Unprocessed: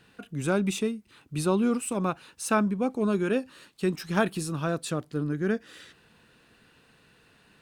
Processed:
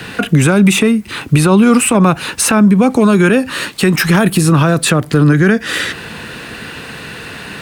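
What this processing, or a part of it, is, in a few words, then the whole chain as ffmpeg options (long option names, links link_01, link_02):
mastering chain: -filter_complex "[0:a]highpass=45,equalizer=frequency=2000:width_type=o:width=0.69:gain=3.5,acrossover=split=200|600|2800|7800[link_01][link_02][link_03][link_04][link_05];[link_01]acompressor=threshold=-35dB:ratio=4[link_06];[link_02]acompressor=threshold=-40dB:ratio=4[link_07];[link_03]acompressor=threshold=-38dB:ratio=4[link_08];[link_04]acompressor=threshold=-55dB:ratio=4[link_09];[link_05]acompressor=threshold=-48dB:ratio=4[link_10];[link_06][link_07][link_08][link_09][link_10]amix=inputs=5:normalize=0,acompressor=threshold=-36dB:ratio=2.5,alimiter=level_in=31.5dB:limit=-1dB:release=50:level=0:latency=1,volume=-1dB"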